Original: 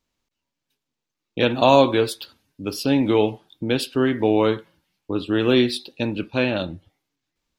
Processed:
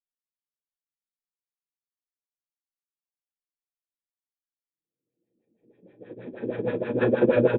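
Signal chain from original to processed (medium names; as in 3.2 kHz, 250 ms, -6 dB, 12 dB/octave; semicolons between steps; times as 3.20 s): de-hum 49.25 Hz, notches 13; Paulstretch 15×, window 0.25 s, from 0.94 s; LFO low-pass sine 6.3 Hz 280–1600 Hz; doubling 32 ms -10.5 dB; upward expansion 2.5:1, over -38 dBFS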